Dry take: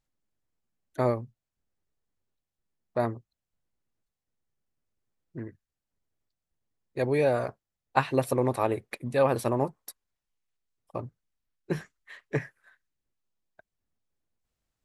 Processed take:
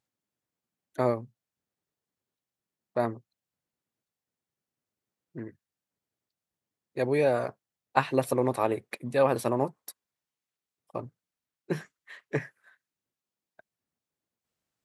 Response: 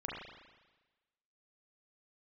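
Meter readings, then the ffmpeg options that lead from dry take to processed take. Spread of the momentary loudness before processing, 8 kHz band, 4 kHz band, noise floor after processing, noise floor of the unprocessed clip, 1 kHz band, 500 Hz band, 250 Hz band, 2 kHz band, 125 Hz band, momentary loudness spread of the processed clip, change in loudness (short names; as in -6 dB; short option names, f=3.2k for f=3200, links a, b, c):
21 LU, 0.0 dB, 0.0 dB, under -85 dBFS, under -85 dBFS, 0.0 dB, 0.0 dB, -0.5 dB, 0.0 dB, -3.0 dB, 21 LU, -0.5 dB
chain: -af "highpass=130"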